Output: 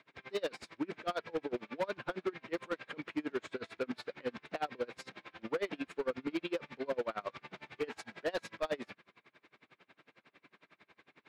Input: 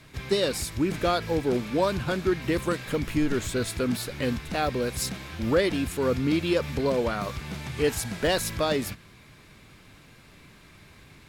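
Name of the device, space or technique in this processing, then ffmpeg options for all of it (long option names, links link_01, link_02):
helicopter radio: -af "highpass=360,lowpass=2800,aeval=exprs='val(0)*pow(10,-30*(0.5-0.5*cos(2*PI*11*n/s))/20)':channel_layout=same,asoftclip=type=hard:threshold=-26.5dB,volume=-1.5dB"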